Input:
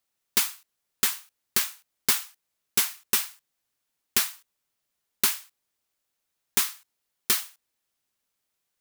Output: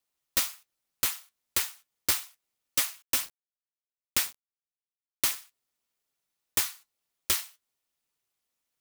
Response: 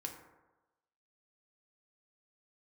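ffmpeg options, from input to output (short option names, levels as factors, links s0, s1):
-filter_complex "[0:a]flanger=delay=7:depth=4.9:regen=50:speed=1.8:shape=triangular,aeval=exprs='val(0)*sin(2*PI*140*n/s)':c=same,bandreject=f=1600:w=18,asettb=1/sr,asplit=3[s0][s1][s2];[s0]atrim=end=3.024[s3];[s1]atrim=start=3.02:end=5.36,asetpts=PTS-STARTPTS,afade=t=in:d=0.004:c=qsin,afade=t=out:st=2.336:d=0.004:c=qsin,aeval=exprs='val(0)*gte(abs(val(0)),0.00794)':c=same[s4];[s2]atrim=start=5.356[s5];[s3][s4]acrossfade=d=0.004:c1=hsin:c2=qsin[s6];[s6][s5]acrossfade=d=0.004:c1=qsin:c2=hsin,volume=1.58"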